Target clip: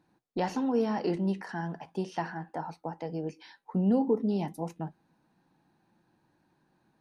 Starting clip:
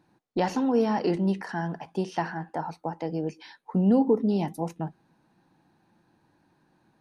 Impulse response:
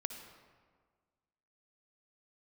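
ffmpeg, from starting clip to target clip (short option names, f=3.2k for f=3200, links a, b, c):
-af "flanger=delay=4:depth=1.5:regen=-82:speed=0.4:shape=sinusoidal"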